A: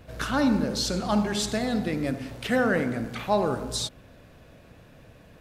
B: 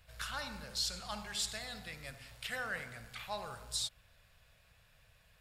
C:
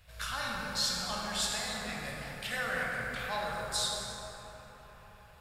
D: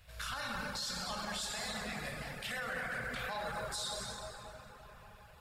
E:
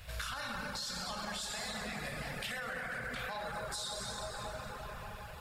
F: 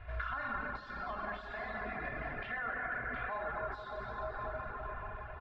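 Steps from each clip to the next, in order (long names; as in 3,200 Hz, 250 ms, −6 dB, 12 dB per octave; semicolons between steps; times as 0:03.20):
guitar amp tone stack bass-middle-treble 10-0-10; notch filter 6,100 Hz, Q 11; level −4.5 dB
dense smooth reverb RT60 4.7 s, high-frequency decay 0.35×, DRR −4 dB; level +2 dB
reverb reduction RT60 0.5 s; brickwall limiter −30 dBFS, peak gain reduction 10.5 dB
downward compressor 10 to 1, threshold −47 dBFS, peak gain reduction 12 dB; level +10 dB
transistor ladder low-pass 2,100 Hz, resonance 25%; comb filter 2.9 ms, depth 64%; level +6 dB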